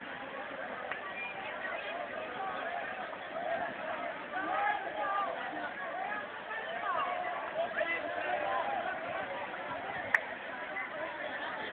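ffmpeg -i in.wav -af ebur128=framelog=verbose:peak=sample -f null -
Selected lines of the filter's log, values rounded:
Integrated loudness:
  I:         -36.4 LUFS
  Threshold: -46.4 LUFS
Loudness range:
  LRA:         3.3 LU
  Threshold: -56.1 LUFS
  LRA low:   -38.2 LUFS
  LRA high:  -34.9 LUFS
Sample peak:
  Peak:      -12.4 dBFS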